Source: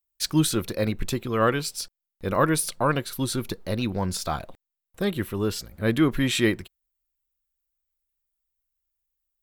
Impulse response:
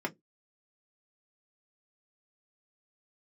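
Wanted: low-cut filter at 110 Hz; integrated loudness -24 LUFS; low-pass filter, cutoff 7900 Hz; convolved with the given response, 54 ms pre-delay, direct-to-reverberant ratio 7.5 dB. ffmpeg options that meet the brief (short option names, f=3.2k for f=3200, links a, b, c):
-filter_complex "[0:a]highpass=110,lowpass=7.9k,asplit=2[a][b];[1:a]atrim=start_sample=2205,adelay=54[c];[b][c]afir=irnorm=-1:irlink=0,volume=-13dB[d];[a][d]amix=inputs=2:normalize=0,volume=1dB"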